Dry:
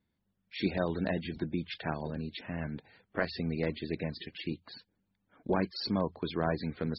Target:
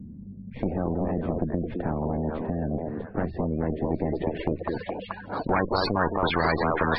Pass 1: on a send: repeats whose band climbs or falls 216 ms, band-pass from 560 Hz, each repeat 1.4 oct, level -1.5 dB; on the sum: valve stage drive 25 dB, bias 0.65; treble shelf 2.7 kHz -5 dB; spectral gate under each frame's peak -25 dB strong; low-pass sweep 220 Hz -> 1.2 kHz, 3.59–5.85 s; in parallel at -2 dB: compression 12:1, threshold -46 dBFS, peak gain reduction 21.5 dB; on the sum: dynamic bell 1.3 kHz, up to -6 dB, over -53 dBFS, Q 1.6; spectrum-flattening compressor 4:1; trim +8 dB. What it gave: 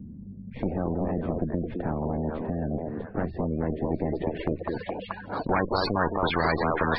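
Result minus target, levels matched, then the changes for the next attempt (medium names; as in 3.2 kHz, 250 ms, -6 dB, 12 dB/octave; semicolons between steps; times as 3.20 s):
compression: peak gain reduction +8 dB
change: compression 12:1, threshold -37.5 dBFS, peak gain reduction 13.5 dB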